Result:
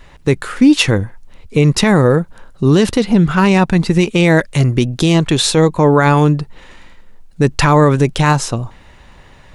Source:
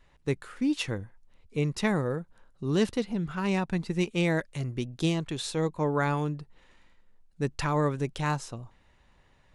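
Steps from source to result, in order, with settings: maximiser +21 dB; gain -1 dB

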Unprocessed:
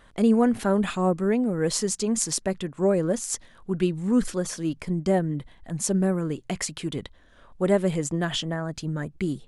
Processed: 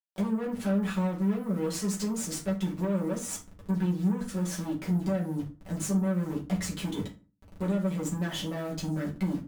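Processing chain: level-crossing sampler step -41.5 dBFS; 6.31–6.77 bell 72 Hz +14.5 dB 1.5 oct; compressor 6:1, threshold -30 dBFS, peak gain reduction 14 dB; tube stage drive 35 dB, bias 0.7; reverb RT60 0.35 s, pre-delay 5 ms, DRR -4.5 dB

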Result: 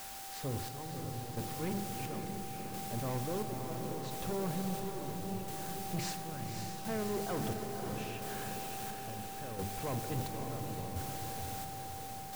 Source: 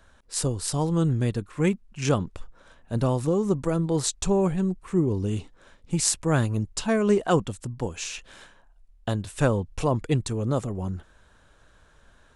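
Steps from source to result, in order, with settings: LPF 2600 Hz 12 dB/oct; low shelf 64 Hz -6.5 dB; notches 50/100/150/200/250/300/350/400 Hz; reverse; compressor 6:1, threshold -34 dBFS, peak gain reduction 16 dB; reverse; requantised 8-bit, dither triangular; whine 780 Hz -51 dBFS; hard clip -34 dBFS, distortion -12 dB; chopper 0.73 Hz, depth 65%, duty 50%; diffused feedback echo 0.559 s, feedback 64%, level -5 dB; on a send at -10 dB: reverb RT60 3.6 s, pre-delay 20 ms; on the sum: gain +1 dB

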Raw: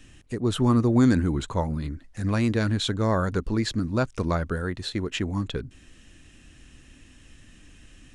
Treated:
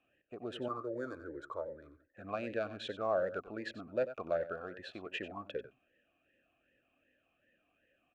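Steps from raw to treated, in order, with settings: Wiener smoothing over 9 samples; gate -41 dBFS, range -8 dB; in parallel at -3 dB: compressor, threshold -29 dBFS, peak gain reduction 13.5 dB; 0.68–2.05 on the sum: fixed phaser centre 740 Hz, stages 6; on a send: echo 93 ms -13 dB; on the sum: vowel sweep a-e 2.6 Hz

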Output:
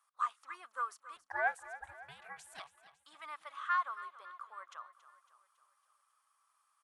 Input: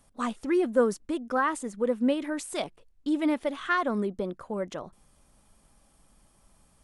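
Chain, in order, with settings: ladder high-pass 1100 Hz, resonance 75%; 1.16–2.6 ring modulator 420 Hz; feedback echo 0.277 s, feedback 56%, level -15.5 dB; gain -2 dB

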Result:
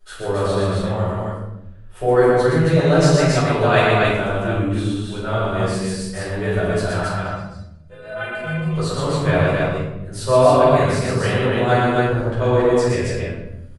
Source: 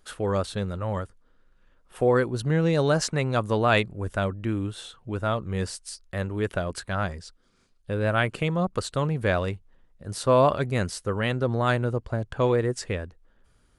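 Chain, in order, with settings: 7.02–8.7 metallic resonator 75 Hz, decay 0.44 s, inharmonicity 0.03; loudspeakers at several distances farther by 41 m -3 dB, 93 m -2 dB; shoebox room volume 250 m³, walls mixed, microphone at 4.7 m; gain -8.5 dB

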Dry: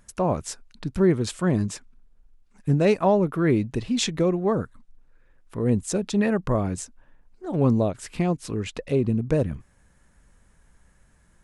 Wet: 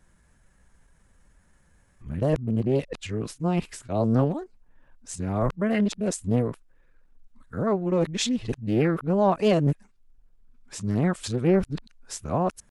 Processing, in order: whole clip reversed; tempo 0.9×; Doppler distortion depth 0.37 ms; gain -1.5 dB

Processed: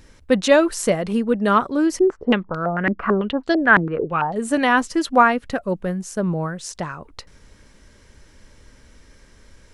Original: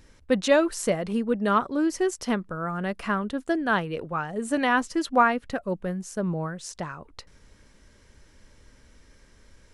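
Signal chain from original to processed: 1.99–4.36 stepped low-pass 9 Hz 290–4300 Hz; gain +5.5 dB

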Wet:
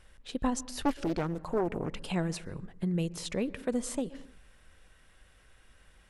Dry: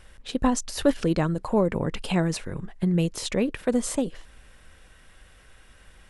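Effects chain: on a send at -19 dB: LPF 1800 Hz 6 dB/oct + reverb, pre-delay 0.116 s; 0.83–1.89 on the sum: Doppler distortion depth 0.59 ms; gain -7.5 dB

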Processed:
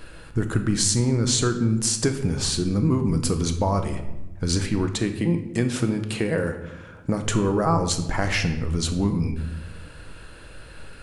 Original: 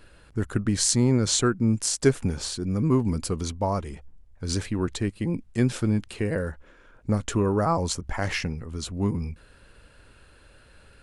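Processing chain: 4.86–7.23 HPF 160 Hz 6 dB/oct; compressor 3:1, threshold -31 dBFS, peak gain reduction 13 dB; shoebox room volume 440 m³, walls mixed, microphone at 0.62 m; gain +9 dB

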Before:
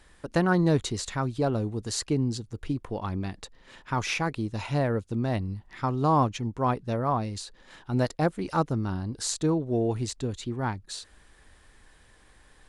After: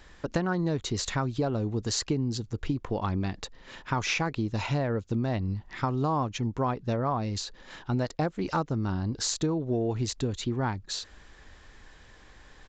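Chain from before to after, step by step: compressor 6:1, threshold -29 dBFS, peak gain reduction 11 dB; downsampling 16000 Hz; gain +4.5 dB

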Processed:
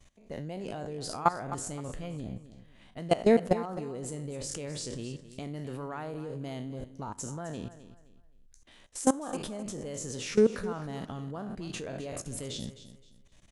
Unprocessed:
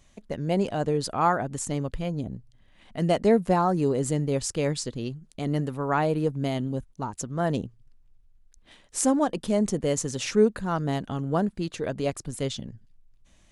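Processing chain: spectral trails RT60 0.37 s; level quantiser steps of 19 dB; on a send: feedback echo 0.26 s, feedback 29%, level -14 dB

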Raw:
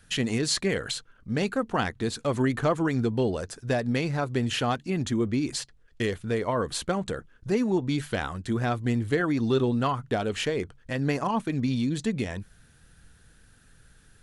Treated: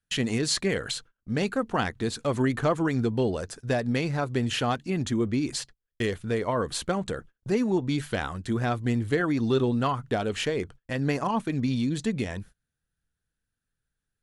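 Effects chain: gate -44 dBFS, range -28 dB

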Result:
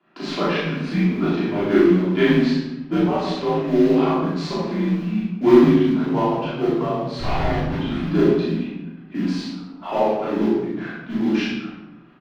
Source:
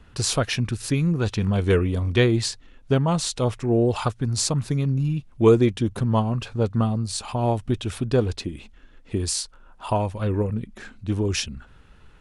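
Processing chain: gate -46 dBFS, range -9 dB; Chebyshev high-pass 260 Hz, order 6; high shelf 7400 Hz -9.5 dB; in parallel at +0.5 dB: compressor, threshold -36 dBFS, peak gain reduction 22 dB; 2.96–3.43 on the sum: auto swell 0.173 s; 7.19–7.74 Schmitt trigger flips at -33 dBFS; frequency shift -90 Hz; modulation noise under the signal 13 dB; air absorption 270 m; on a send: loudspeakers at several distances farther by 13 m 0 dB, 27 m -11 dB; on the sum: shoebox room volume 430 m³, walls mixed, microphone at 3.1 m; gain -6 dB

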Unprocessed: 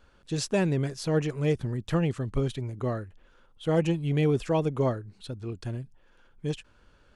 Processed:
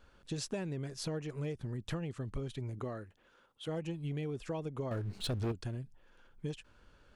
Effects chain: compressor 10:1, threshold -32 dBFS, peak gain reduction 14 dB; 2.78–3.67 HPF 120 Hz -> 390 Hz 6 dB/oct; 4.91–5.52 sample leveller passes 3; gain -2.5 dB

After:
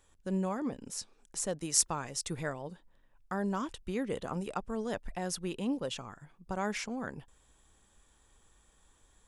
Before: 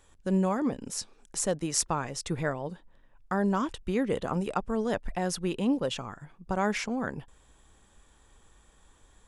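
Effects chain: high shelf 4300 Hz +2.5 dB, from 1.61 s +10.5 dB, from 2.62 s +5.5 dB; gain -6.5 dB

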